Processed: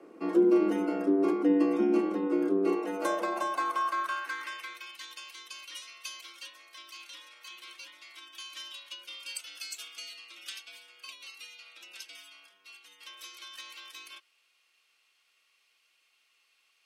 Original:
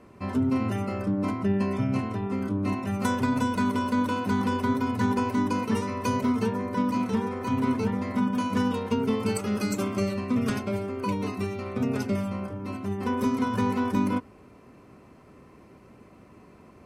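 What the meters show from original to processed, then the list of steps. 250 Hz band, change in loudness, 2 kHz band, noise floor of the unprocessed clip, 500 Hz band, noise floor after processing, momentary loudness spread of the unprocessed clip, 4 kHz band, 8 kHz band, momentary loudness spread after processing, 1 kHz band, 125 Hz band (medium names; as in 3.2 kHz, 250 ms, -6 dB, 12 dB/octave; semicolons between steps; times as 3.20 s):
-6.5 dB, -3.0 dB, -4.0 dB, -52 dBFS, -1.0 dB, -71 dBFS, 5 LU, +1.0 dB, -3.0 dB, 21 LU, -6.0 dB, under -20 dB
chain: frequency shift +94 Hz; high-pass sweep 320 Hz -> 3.3 kHz, 2.56–5.06 s; trim -4.5 dB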